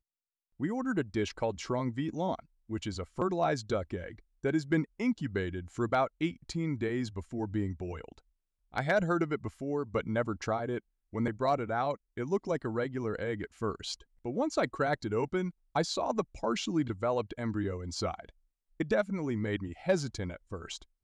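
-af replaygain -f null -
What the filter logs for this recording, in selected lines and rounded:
track_gain = +13.2 dB
track_peak = 0.084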